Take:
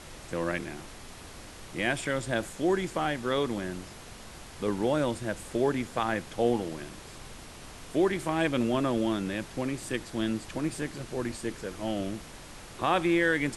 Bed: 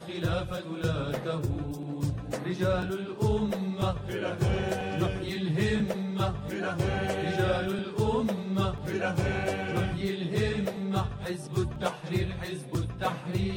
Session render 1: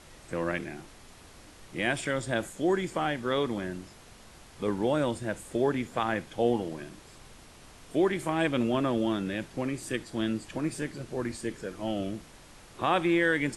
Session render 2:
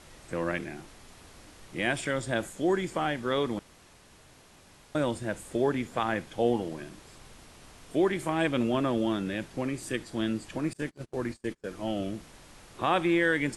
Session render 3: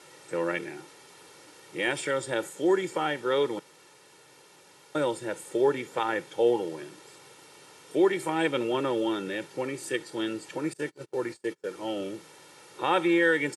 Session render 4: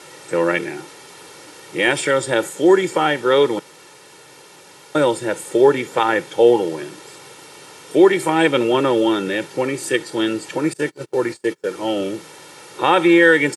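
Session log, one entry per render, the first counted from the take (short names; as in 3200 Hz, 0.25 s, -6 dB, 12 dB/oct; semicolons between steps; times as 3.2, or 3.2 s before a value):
noise print and reduce 6 dB
3.59–4.95 room tone; 10.73–11.66 gate -39 dBFS, range -31 dB
HPF 160 Hz 24 dB/oct; comb 2.2 ms, depth 74%
gain +11 dB; limiter -2 dBFS, peak gain reduction 3 dB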